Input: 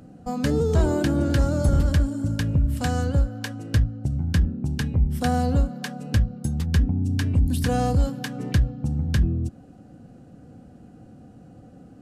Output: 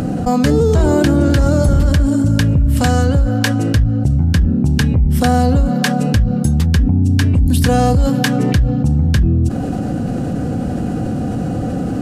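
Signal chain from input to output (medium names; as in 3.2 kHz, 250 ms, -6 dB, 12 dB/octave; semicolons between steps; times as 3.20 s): level flattener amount 70%; trim +5 dB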